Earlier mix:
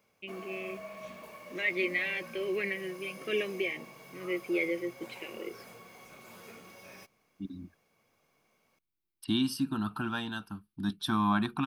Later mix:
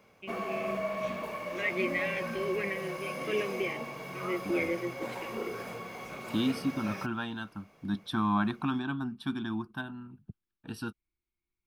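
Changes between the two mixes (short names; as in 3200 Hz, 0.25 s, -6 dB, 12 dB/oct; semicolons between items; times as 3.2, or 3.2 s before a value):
second voice: entry -2.95 s; background +11.5 dB; master: add high shelf 4300 Hz -10.5 dB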